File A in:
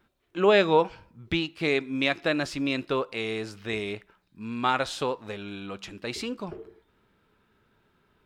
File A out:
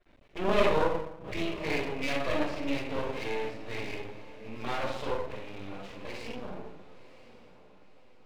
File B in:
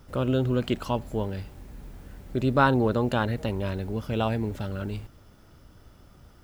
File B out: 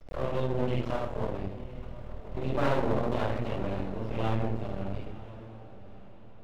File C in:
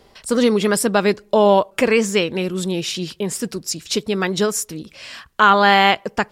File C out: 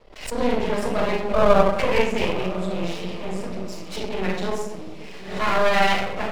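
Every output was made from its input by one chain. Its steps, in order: gate -48 dBFS, range -23 dB; FFT filter 390 Hz 0 dB, 640 Hz +6 dB, 1.4 kHz -7 dB, 2.1 kHz +3 dB, 14 kHz -18 dB; simulated room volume 190 m³, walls mixed, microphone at 5.7 m; half-wave rectifier; on a send: echo that smears into a reverb 1017 ms, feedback 43%, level -16 dB; on the sum: swell ahead of each attack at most 90 dB/s; trim -18 dB

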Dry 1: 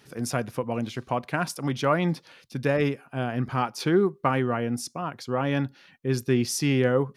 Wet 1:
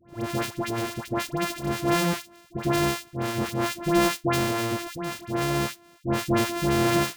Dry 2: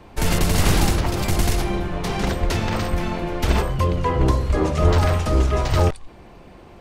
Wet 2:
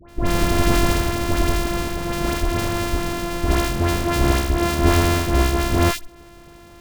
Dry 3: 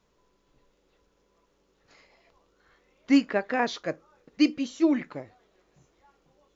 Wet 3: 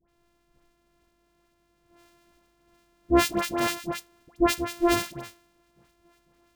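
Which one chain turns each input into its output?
sorted samples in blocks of 128 samples; phase dispersion highs, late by 89 ms, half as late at 1.3 kHz

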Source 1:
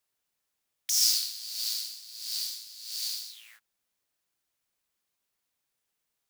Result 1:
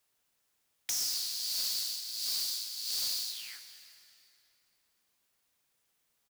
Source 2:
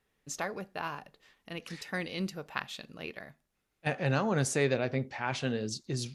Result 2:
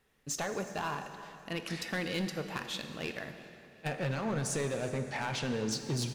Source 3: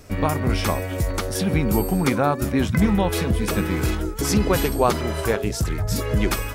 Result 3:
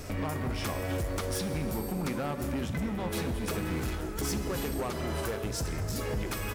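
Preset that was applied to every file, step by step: compression 12:1, threshold -32 dBFS; overload inside the chain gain 33.5 dB; on a send: frequency-shifting echo 362 ms, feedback 35%, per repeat +39 Hz, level -20.5 dB; on the sum: plate-style reverb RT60 2.9 s, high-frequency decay 0.8×, DRR 7.5 dB; trim +4.5 dB

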